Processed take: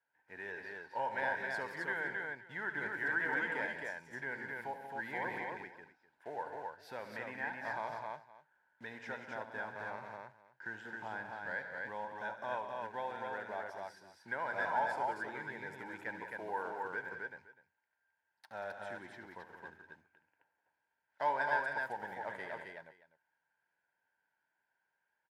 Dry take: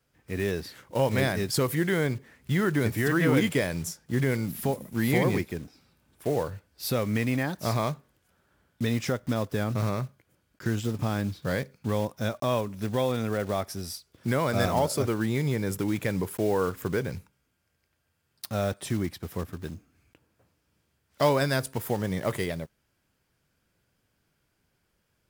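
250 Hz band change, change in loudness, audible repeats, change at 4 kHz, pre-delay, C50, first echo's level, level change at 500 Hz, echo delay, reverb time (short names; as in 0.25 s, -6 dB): -23.0 dB, -11.5 dB, 5, -19.0 dB, none, none, -12.0 dB, -15.0 dB, 72 ms, none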